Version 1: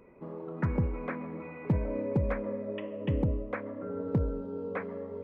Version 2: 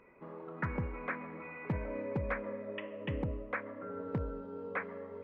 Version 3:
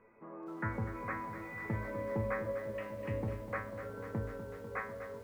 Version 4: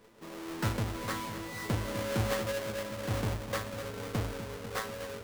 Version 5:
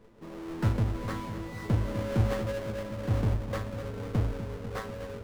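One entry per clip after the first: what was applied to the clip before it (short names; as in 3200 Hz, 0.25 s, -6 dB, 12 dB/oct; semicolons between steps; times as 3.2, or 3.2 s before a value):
bell 1800 Hz +12 dB 2.3 oct; gain -8.5 dB
LPF 2200 Hz 24 dB/oct; resonator 110 Hz, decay 0.35 s, harmonics all, mix 90%; lo-fi delay 0.248 s, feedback 80%, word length 11-bit, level -11 dB; gain +8.5 dB
half-waves squared off
tilt -2.5 dB/oct; gain -1.5 dB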